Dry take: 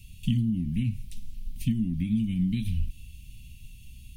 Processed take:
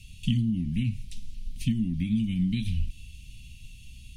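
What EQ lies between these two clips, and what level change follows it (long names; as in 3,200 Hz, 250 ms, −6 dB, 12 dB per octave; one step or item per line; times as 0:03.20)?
high-frequency loss of the air 62 metres
high-shelf EQ 2,600 Hz +9.5 dB
0.0 dB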